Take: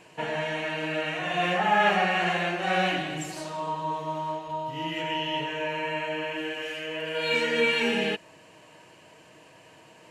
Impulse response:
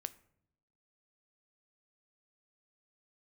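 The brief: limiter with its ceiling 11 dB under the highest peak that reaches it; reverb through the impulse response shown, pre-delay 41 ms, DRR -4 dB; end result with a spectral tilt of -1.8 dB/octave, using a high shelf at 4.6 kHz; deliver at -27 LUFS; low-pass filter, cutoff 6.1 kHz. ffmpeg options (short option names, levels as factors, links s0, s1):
-filter_complex "[0:a]lowpass=6100,highshelf=f=4600:g=3.5,alimiter=limit=0.0841:level=0:latency=1,asplit=2[s0][s1];[1:a]atrim=start_sample=2205,adelay=41[s2];[s1][s2]afir=irnorm=-1:irlink=0,volume=2.11[s3];[s0][s3]amix=inputs=2:normalize=0,volume=0.841"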